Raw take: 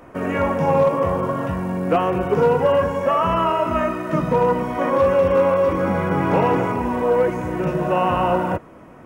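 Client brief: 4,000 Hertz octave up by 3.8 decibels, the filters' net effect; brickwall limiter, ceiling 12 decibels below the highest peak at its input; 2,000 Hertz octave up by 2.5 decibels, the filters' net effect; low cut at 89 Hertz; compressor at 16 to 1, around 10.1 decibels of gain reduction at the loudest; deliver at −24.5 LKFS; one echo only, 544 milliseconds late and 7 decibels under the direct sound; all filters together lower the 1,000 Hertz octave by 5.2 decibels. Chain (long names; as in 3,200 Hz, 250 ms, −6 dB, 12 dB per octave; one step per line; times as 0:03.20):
high-pass filter 89 Hz
parametric band 1,000 Hz −8 dB
parametric band 2,000 Hz +5.5 dB
parametric band 4,000 Hz +3.5 dB
downward compressor 16 to 1, threshold −24 dBFS
brickwall limiter −26.5 dBFS
single-tap delay 544 ms −7 dB
level +9 dB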